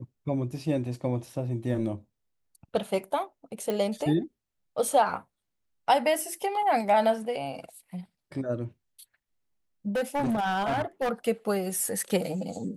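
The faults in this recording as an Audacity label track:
3.700000	3.700000	click −17 dBFS
9.950000	11.120000	clipping −24 dBFS

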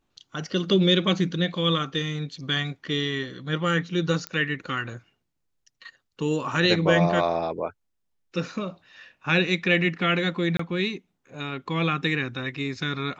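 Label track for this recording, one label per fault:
4.270000	4.270000	click −15 dBFS
10.570000	10.590000	drop-out 24 ms

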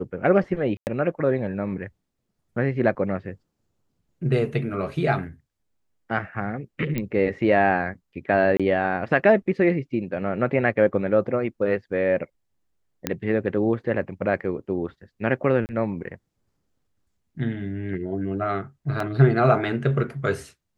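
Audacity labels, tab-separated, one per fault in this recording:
0.770000	0.870000	drop-out 99 ms
6.980000	6.980000	click −13 dBFS
8.570000	8.600000	drop-out 26 ms
13.070000	13.070000	click −8 dBFS
15.660000	15.690000	drop-out 29 ms
19.000000	19.000000	drop-out 2.7 ms

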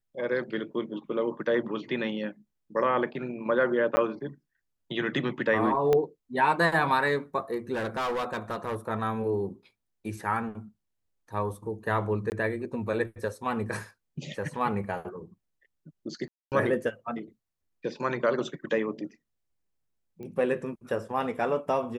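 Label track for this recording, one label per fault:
3.960000	3.970000	drop-out 10 ms
5.930000	5.930000	click −13 dBFS
7.730000	8.760000	clipping −26.5 dBFS
12.300000	12.320000	drop-out 19 ms
16.280000	16.520000	drop-out 238 ms
20.230000	20.230000	click −31 dBFS

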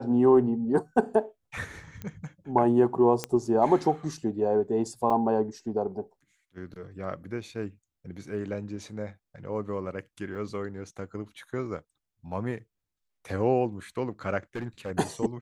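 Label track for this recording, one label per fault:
2.020000	2.020000	click −23 dBFS
3.240000	3.240000	click −13 dBFS
5.100000	5.100000	drop-out 3.9 ms
10.350000	10.350000	drop-out 4.2 ms
14.550000	14.920000	clipping −29 dBFS

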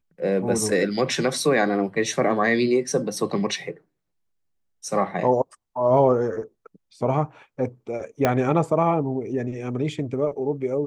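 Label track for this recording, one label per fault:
8.250000	8.250000	click −6 dBFS

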